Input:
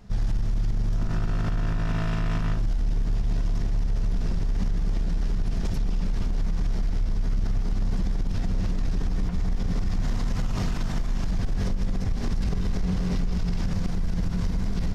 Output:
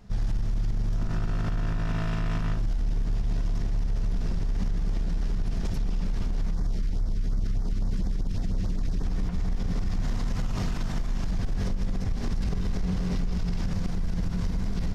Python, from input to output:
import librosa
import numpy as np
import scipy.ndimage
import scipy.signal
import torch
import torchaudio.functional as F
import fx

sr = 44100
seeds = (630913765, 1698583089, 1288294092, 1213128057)

y = fx.filter_lfo_notch(x, sr, shape='sine', hz=fx.line((6.53, 2.0), (9.03, 9.9)), low_hz=710.0, high_hz=2900.0, q=0.86, at=(6.53, 9.03), fade=0.02)
y = F.gain(torch.from_numpy(y), -2.0).numpy()